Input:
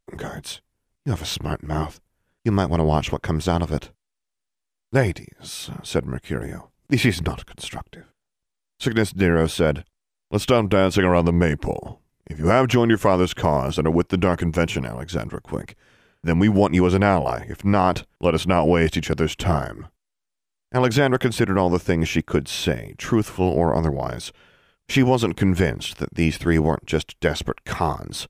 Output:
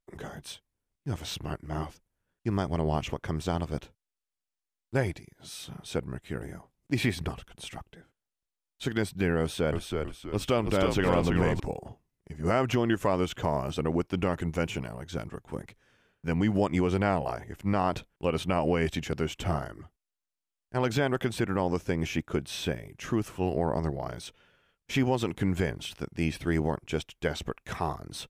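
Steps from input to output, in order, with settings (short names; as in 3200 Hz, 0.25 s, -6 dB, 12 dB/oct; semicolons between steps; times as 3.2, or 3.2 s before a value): 9.4–11.6 frequency-shifting echo 0.323 s, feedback 40%, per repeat -67 Hz, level -3.5 dB; gain -9 dB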